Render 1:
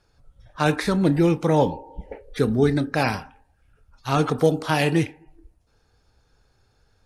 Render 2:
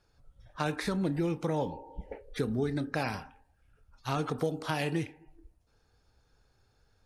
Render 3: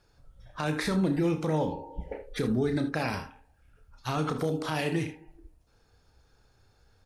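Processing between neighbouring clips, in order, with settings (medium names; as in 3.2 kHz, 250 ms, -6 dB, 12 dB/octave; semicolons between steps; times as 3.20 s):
compression 3:1, threshold -23 dBFS, peak gain reduction 8.5 dB; trim -5.5 dB
peak limiter -22.5 dBFS, peak gain reduction 7.5 dB; early reflections 32 ms -10 dB, 65 ms -15.5 dB, 78 ms -14.5 dB; trim +4 dB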